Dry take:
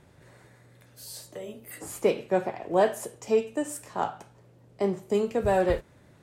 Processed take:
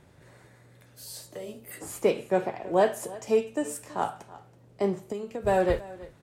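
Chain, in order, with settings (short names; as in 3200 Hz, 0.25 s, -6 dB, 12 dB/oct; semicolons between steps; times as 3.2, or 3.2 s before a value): echo 0.327 s -19 dB; 4.98–5.47 compressor 10:1, threshold -31 dBFS, peak gain reduction 11.5 dB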